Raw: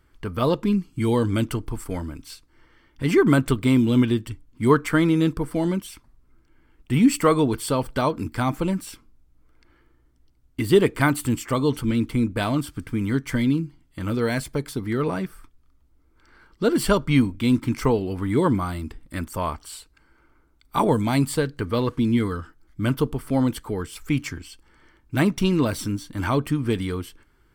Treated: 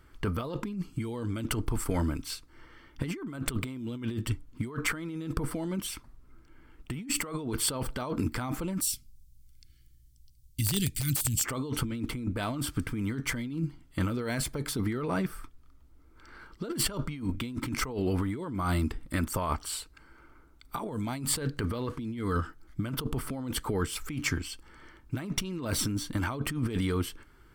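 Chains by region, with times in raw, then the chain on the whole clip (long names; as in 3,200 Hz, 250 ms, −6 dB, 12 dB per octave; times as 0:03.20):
0:08.81–0:11.44: Chebyshev band-stop filter 120–4,400 Hz + high-shelf EQ 5,800 Hz +10.5 dB + wrap-around overflow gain 18 dB
whole clip: parametric band 1,300 Hz +3 dB 0.21 octaves; compressor whose output falls as the input rises −29 dBFS, ratio −1; level −3 dB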